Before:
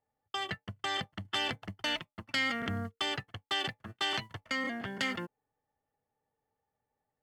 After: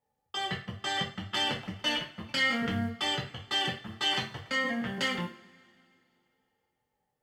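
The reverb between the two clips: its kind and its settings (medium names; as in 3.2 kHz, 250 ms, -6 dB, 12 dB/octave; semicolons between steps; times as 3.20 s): two-slope reverb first 0.33 s, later 2.6 s, from -27 dB, DRR -3.5 dB; trim -2 dB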